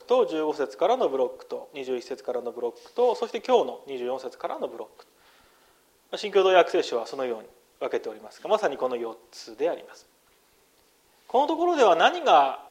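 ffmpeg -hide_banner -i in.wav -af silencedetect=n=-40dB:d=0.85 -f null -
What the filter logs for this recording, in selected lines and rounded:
silence_start: 5.00
silence_end: 6.13 | silence_duration: 1.12
silence_start: 9.98
silence_end: 11.30 | silence_duration: 1.31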